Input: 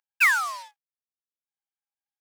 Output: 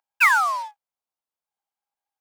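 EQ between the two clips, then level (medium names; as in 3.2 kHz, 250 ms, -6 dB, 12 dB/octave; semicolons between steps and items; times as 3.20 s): peaking EQ 830 Hz +13 dB 1.3 oct; band-stop 1.8 kHz, Q 13; 0.0 dB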